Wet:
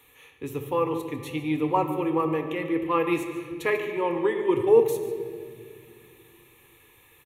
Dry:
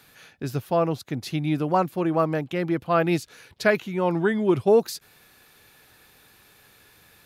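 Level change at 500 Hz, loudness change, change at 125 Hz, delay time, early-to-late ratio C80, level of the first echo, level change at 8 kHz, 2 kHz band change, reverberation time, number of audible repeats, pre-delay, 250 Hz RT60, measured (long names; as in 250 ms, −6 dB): −0.5 dB, −2.0 dB, −7.5 dB, 146 ms, 8.0 dB, −15.5 dB, −4.5 dB, −3.5 dB, 2.1 s, 1, 4 ms, 3.8 s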